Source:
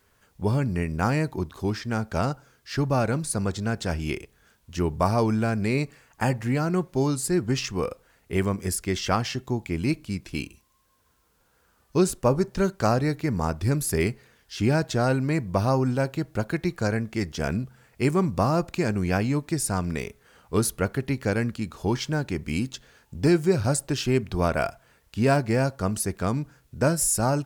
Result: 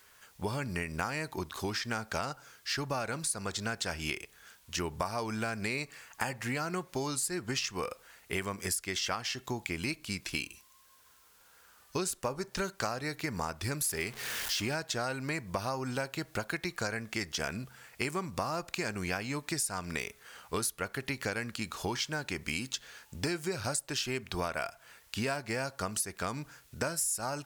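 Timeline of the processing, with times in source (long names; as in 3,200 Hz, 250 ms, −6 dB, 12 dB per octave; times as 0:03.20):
0:13.84–0:14.75: converter with a step at zero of −36 dBFS
whole clip: tilt shelving filter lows −8 dB, about 630 Hz; downward compressor 6 to 1, threshold −31 dBFS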